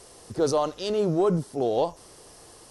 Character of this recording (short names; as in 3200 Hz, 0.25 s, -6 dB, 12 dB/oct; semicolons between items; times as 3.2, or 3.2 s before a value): noise floor -51 dBFS; spectral tilt -6.5 dB/oct